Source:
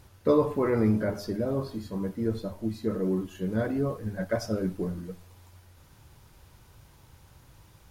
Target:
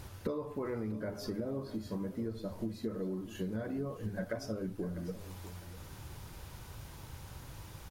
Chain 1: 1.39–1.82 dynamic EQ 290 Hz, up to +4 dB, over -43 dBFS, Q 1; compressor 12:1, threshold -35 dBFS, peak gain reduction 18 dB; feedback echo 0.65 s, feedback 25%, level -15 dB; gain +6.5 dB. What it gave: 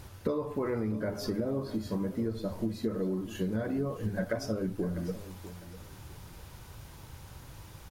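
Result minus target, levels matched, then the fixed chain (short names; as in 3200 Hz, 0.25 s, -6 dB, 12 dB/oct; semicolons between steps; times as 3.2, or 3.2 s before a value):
compressor: peak gain reduction -5.5 dB
1.39–1.82 dynamic EQ 290 Hz, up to +4 dB, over -43 dBFS, Q 1; compressor 12:1, threshold -41 dBFS, peak gain reduction 23.5 dB; feedback echo 0.65 s, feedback 25%, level -15 dB; gain +6.5 dB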